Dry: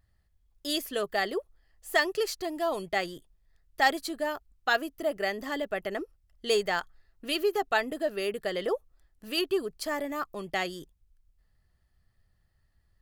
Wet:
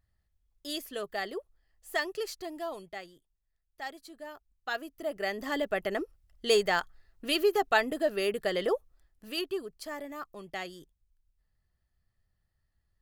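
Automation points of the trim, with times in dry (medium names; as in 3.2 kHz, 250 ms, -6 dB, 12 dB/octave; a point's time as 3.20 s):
2.57 s -6 dB
3.15 s -16 dB
3.93 s -16 dB
4.98 s -6 dB
5.58 s +1.5 dB
8.62 s +1.5 dB
9.72 s -7.5 dB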